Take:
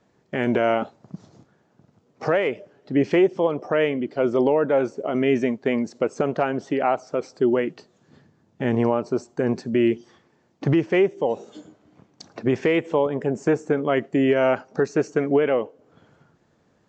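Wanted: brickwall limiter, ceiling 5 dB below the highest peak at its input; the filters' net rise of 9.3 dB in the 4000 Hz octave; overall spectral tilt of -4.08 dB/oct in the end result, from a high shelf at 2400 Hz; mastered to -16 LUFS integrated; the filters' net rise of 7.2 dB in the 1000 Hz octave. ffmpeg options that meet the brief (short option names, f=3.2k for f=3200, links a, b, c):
-af "equalizer=f=1k:t=o:g=8.5,highshelf=f=2.4k:g=6.5,equalizer=f=4k:t=o:g=7.5,volume=5.5dB,alimiter=limit=-3.5dB:level=0:latency=1"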